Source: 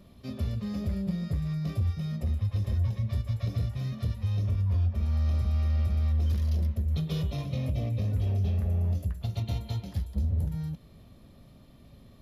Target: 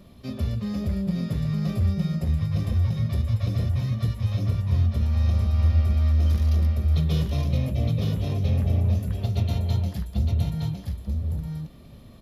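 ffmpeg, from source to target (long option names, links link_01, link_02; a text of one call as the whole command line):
ffmpeg -i in.wav -af "bandreject=frequency=50:width_type=h:width=6,bandreject=frequency=100:width_type=h:width=6,aecho=1:1:915:0.668,volume=4.5dB" out.wav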